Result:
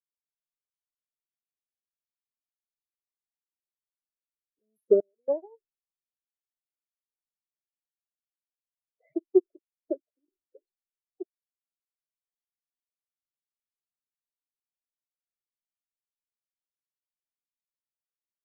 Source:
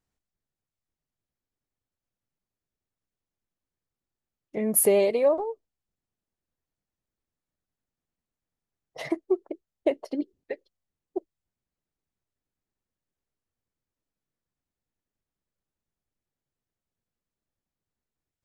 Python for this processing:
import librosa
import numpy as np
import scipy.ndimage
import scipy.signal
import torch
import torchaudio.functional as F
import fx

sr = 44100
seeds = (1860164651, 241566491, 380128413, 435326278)

y = fx.peak_eq(x, sr, hz=360.0, db=6.0, octaves=0.45)
y = fx.spec_topn(y, sr, count=8)
y = fx.dispersion(y, sr, late='lows', ms=44.0, hz=2700.0)
y = fx.step_gate(y, sr, bpm=108, pattern='..xxxxxxx..x', floor_db=-24.0, edge_ms=4.5)
y = fx.upward_expand(y, sr, threshold_db=-33.0, expansion=2.5)